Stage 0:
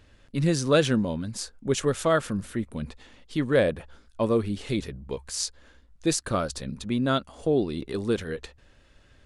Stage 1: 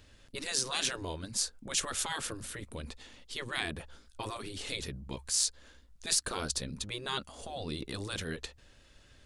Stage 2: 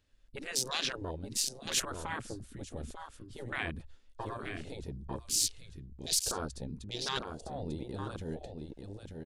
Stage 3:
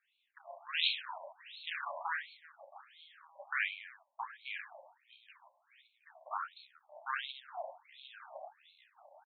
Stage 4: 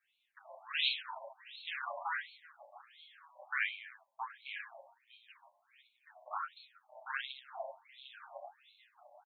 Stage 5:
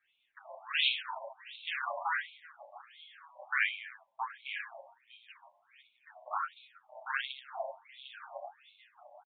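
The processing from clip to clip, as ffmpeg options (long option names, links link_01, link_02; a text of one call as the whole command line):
ffmpeg -i in.wav -filter_complex "[0:a]acrossover=split=3200[link_01][link_02];[link_02]acontrast=83[link_03];[link_01][link_03]amix=inputs=2:normalize=0,afftfilt=real='re*lt(hypot(re,im),0.178)':imag='im*lt(hypot(re,im),0.178)':win_size=1024:overlap=0.75,volume=-3dB" out.wav
ffmpeg -i in.wav -af "aecho=1:1:895:0.562,afwtdn=0.0141" out.wav
ffmpeg -i in.wav -filter_complex "[0:a]asplit=2[link_01][link_02];[link_02]aecho=0:1:30|72|130.8|213.1|328.4:0.631|0.398|0.251|0.158|0.1[link_03];[link_01][link_03]amix=inputs=2:normalize=0,afftfilt=real='re*between(b*sr/1024,760*pow(3100/760,0.5+0.5*sin(2*PI*1.4*pts/sr))/1.41,760*pow(3100/760,0.5+0.5*sin(2*PI*1.4*pts/sr))*1.41)':imag='im*between(b*sr/1024,760*pow(3100/760,0.5+0.5*sin(2*PI*1.4*pts/sr))/1.41,760*pow(3100/760,0.5+0.5*sin(2*PI*1.4*pts/sr))*1.41)':win_size=1024:overlap=0.75,volume=3dB" out.wav
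ffmpeg -i in.wav -filter_complex "[0:a]asplit=2[link_01][link_02];[link_02]adelay=7.6,afreqshift=0.31[link_03];[link_01][link_03]amix=inputs=2:normalize=1,volume=2.5dB" out.wav
ffmpeg -i in.wav -af "aresample=8000,aresample=44100,volume=4.5dB" out.wav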